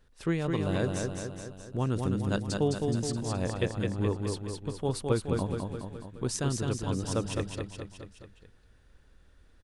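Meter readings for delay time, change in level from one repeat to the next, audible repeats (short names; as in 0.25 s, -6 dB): 0.211 s, -4.5 dB, 5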